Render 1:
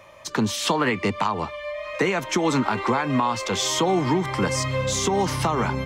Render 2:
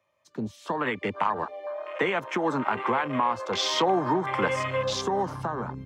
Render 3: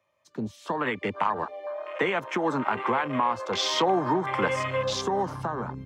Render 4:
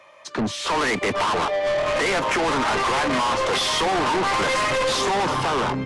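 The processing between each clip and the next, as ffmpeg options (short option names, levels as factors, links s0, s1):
-filter_complex "[0:a]acrossover=split=390[s0][s1];[s1]dynaudnorm=f=210:g=9:m=5.01[s2];[s0][s2]amix=inputs=2:normalize=0,afwtdn=0.0891,highpass=79,volume=0.355"
-af anull
-filter_complex "[0:a]asplit=2[s0][s1];[s1]highpass=f=720:p=1,volume=44.7,asoftclip=type=tanh:threshold=0.335[s2];[s0][s2]amix=inputs=2:normalize=0,lowpass=f=3600:p=1,volume=0.501,asoftclip=type=tanh:threshold=0.106" -ar 24000 -c:a aac -b:a 48k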